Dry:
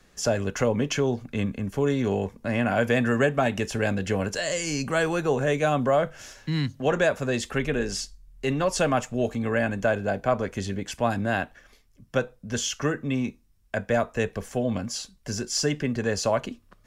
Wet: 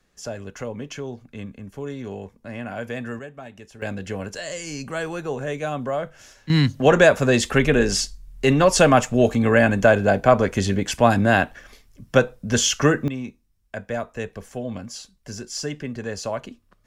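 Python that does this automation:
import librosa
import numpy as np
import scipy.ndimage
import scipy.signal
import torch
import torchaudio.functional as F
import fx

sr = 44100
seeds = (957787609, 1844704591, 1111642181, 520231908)

y = fx.gain(x, sr, db=fx.steps((0.0, -8.0), (3.19, -16.0), (3.82, -4.0), (6.5, 8.5), (13.08, -4.0)))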